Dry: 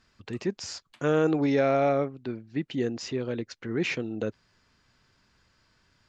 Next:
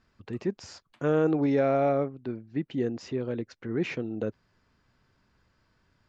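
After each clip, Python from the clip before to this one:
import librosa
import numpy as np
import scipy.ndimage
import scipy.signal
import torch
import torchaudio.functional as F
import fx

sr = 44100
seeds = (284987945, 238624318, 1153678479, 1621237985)

y = fx.high_shelf(x, sr, hz=2100.0, db=-10.5)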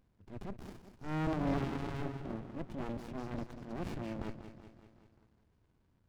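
y = fx.transient(x, sr, attack_db=-11, sustain_db=2)
y = fx.echo_feedback(y, sr, ms=192, feedback_pct=57, wet_db=-11.5)
y = fx.running_max(y, sr, window=65)
y = y * librosa.db_to_amplitude(-1.5)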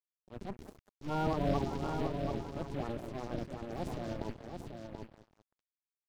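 y = fx.spec_quant(x, sr, step_db=30)
y = np.sign(y) * np.maximum(np.abs(y) - 10.0 ** (-49.5 / 20.0), 0.0)
y = y + 10.0 ** (-6.0 / 20.0) * np.pad(y, (int(733 * sr / 1000.0), 0))[:len(y)]
y = y * librosa.db_to_amplitude(3.5)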